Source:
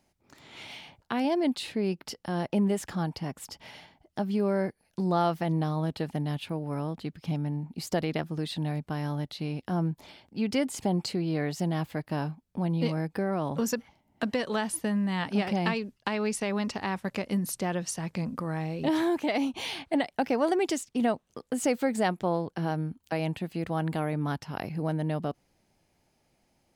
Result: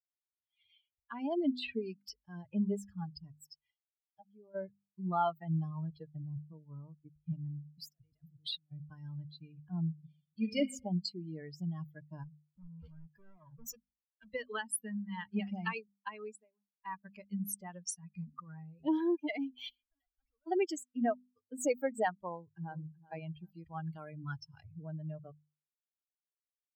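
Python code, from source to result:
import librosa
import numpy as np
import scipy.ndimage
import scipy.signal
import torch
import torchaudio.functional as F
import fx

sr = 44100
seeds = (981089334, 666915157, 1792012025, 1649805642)

y = fx.band_squash(x, sr, depth_pct=70, at=(1.62, 2.17))
y = fx.comb_fb(y, sr, f0_hz=160.0, decay_s=0.16, harmonics='all', damping=0.0, mix_pct=70, at=(3.74, 4.55))
y = fx.lowpass(y, sr, hz=fx.line((6.16, 1000.0), (7.25, 2700.0)), slope=24, at=(6.16, 7.25), fade=0.02)
y = fx.over_compress(y, sr, threshold_db=-39.0, ratio=-1.0, at=(7.89, 8.72))
y = fx.reverb_throw(y, sr, start_s=9.88, length_s=0.71, rt60_s=1.3, drr_db=-0.5)
y = fx.clip_hard(y, sr, threshold_db=-32.0, at=(12.23, 14.34))
y = fx.studio_fade_out(y, sr, start_s=15.98, length_s=0.87)
y = fx.tube_stage(y, sr, drive_db=44.0, bias=0.65, at=(19.69, 20.47))
y = fx.echo_throw(y, sr, start_s=22.32, length_s=0.49, ms=380, feedback_pct=45, wet_db=-7.0)
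y = fx.peak_eq(y, sr, hz=5800.0, db=6.0, octaves=1.5, at=(23.47, 24.64))
y = fx.bin_expand(y, sr, power=3.0)
y = fx.hum_notches(y, sr, base_hz=50, count=5)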